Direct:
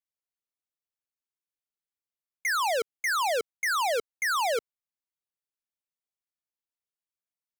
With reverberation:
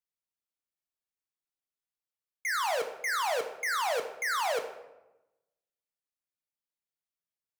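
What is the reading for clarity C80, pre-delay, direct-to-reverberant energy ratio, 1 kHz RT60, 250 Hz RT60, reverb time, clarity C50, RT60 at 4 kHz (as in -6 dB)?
11.0 dB, 6 ms, 4.5 dB, 0.95 s, 1.2 s, 1.0 s, 8.5 dB, 0.60 s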